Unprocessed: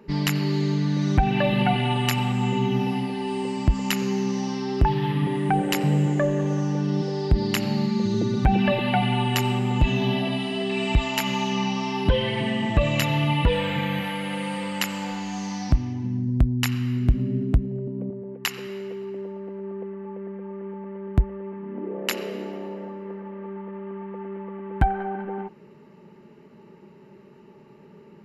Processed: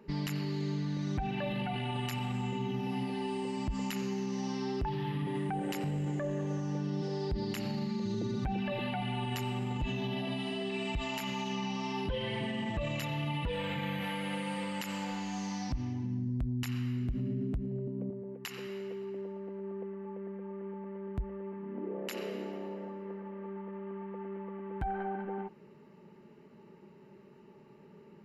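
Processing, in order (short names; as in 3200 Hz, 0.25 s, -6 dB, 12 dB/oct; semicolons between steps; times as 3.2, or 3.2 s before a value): limiter -20.5 dBFS, peak gain reduction 10.5 dB; gain -6.5 dB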